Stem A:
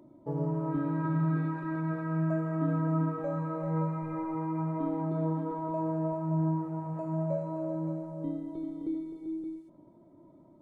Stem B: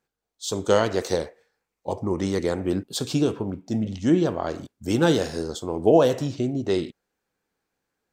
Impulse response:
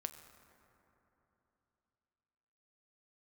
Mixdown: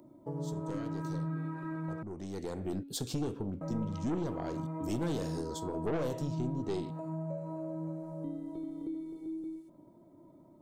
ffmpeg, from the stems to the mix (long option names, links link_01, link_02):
-filter_complex "[0:a]acrossover=split=460[link_01][link_02];[link_02]acompressor=threshold=-42dB:ratio=1.5[link_03];[link_01][link_03]amix=inputs=2:normalize=0,volume=-1dB,asplit=3[link_04][link_05][link_06];[link_04]atrim=end=2.03,asetpts=PTS-STARTPTS,afade=type=out:start_time=2.026:duration=0.004:curve=hsin[link_07];[link_05]atrim=start=2.03:end=3.61,asetpts=PTS-STARTPTS,volume=0[link_08];[link_06]atrim=start=3.61,asetpts=PTS-STARTPTS,afade=type=in:duration=0.004:curve=hsin[link_09];[link_07][link_08][link_09]concat=n=3:v=0:a=1[link_10];[1:a]lowshelf=frequency=470:gain=10.5,bandreject=frequency=279.6:width_type=h:width=4,bandreject=frequency=559.2:width_type=h:width=4,bandreject=frequency=838.8:width_type=h:width=4,bandreject=frequency=1118.4:width_type=h:width=4,bandreject=frequency=1398:width_type=h:width=4,bandreject=frequency=1677.6:width_type=h:width=4,bandreject=frequency=1957.2:width_type=h:width=4,bandreject=frequency=2236.8:width_type=h:width=4,bandreject=frequency=2516.4:width_type=h:width=4,bandreject=frequency=2796:width_type=h:width=4,bandreject=frequency=3075.6:width_type=h:width=4,bandreject=frequency=3355.2:width_type=h:width=4,bandreject=frequency=3634.8:width_type=h:width=4,bandreject=frequency=3914.4:width_type=h:width=4,bandreject=frequency=4194:width_type=h:width=4,bandreject=frequency=4473.6:width_type=h:width=4,aeval=exprs='(tanh(3.98*val(0)+0.35)-tanh(0.35))/3.98':channel_layout=same,volume=-7.5dB,afade=type=in:start_time=2.28:duration=0.57:silence=0.237137[link_11];[link_10][link_11]amix=inputs=2:normalize=0,highshelf=frequency=6100:gain=9.5,acompressor=threshold=-38dB:ratio=2"